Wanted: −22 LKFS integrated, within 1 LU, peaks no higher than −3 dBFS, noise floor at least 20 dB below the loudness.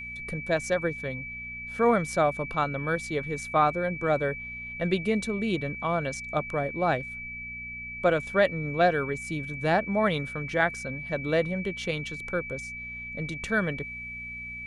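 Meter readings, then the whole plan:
mains hum 60 Hz; hum harmonics up to 240 Hz; level of the hum −46 dBFS; interfering tone 2,300 Hz; level of the tone −36 dBFS; integrated loudness −28.5 LKFS; sample peak −10.0 dBFS; target loudness −22.0 LKFS
→ hum removal 60 Hz, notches 4
notch filter 2,300 Hz, Q 30
level +6.5 dB

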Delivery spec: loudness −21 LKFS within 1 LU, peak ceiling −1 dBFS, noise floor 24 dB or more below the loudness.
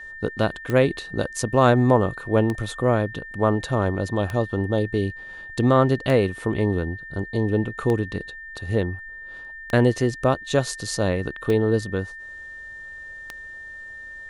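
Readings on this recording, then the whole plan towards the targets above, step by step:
number of clicks 8; interfering tone 1,800 Hz; level of the tone −36 dBFS; integrated loudness −23.0 LKFS; sample peak −4.0 dBFS; target loudness −21.0 LKFS
→ click removal
notch filter 1,800 Hz, Q 30
level +2 dB

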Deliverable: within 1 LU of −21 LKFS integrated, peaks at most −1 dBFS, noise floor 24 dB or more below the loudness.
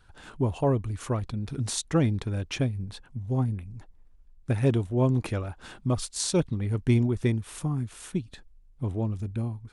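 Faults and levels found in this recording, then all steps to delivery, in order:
integrated loudness −28.5 LKFS; sample peak −10.0 dBFS; target loudness −21.0 LKFS
→ level +7.5 dB

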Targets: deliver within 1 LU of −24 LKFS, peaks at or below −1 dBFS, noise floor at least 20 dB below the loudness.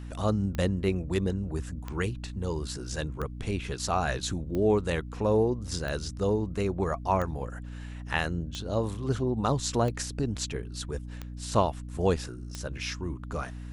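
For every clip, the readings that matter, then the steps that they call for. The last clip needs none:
number of clicks 10; mains hum 60 Hz; hum harmonics up to 300 Hz; level of the hum −37 dBFS; integrated loudness −30.5 LKFS; sample peak −9.5 dBFS; target loudness −24.0 LKFS
→ click removal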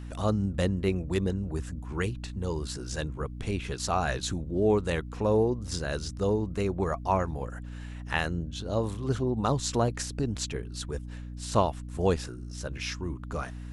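number of clicks 0; mains hum 60 Hz; hum harmonics up to 300 Hz; level of the hum −37 dBFS
→ hum removal 60 Hz, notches 5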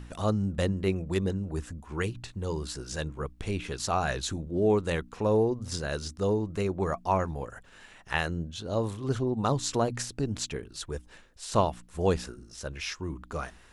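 mains hum none found; integrated loudness −30.5 LKFS; sample peak −9.5 dBFS; target loudness −24.0 LKFS
→ level +6.5 dB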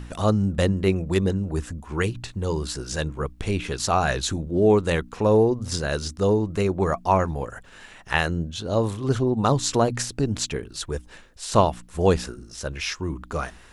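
integrated loudness −24.0 LKFS; sample peak −3.0 dBFS; background noise floor −48 dBFS

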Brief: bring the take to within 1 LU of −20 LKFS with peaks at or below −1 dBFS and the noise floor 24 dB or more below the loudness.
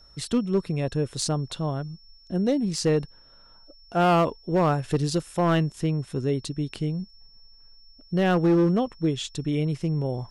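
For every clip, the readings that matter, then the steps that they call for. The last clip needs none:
share of clipped samples 1.4%; peaks flattened at −15.5 dBFS; interfering tone 5,400 Hz; level of the tone −53 dBFS; integrated loudness −25.5 LKFS; sample peak −15.5 dBFS; target loudness −20.0 LKFS
→ clipped peaks rebuilt −15.5 dBFS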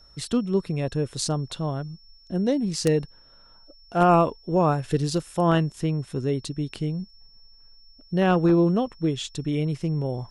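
share of clipped samples 0.0%; interfering tone 5,400 Hz; level of the tone −53 dBFS
→ notch filter 5,400 Hz, Q 30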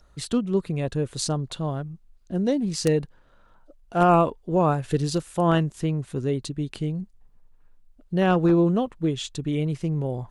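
interfering tone none found; integrated loudness −24.5 LKFS; sample peak −6.5 dBFS; target loudness −20.0 LKFS
→ level +4.5 dB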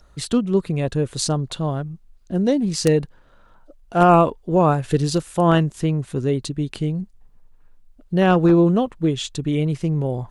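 integrated loudness −20.0 LKFS; sample peak −2.0 dBFS; background noise floor −52 dBFS

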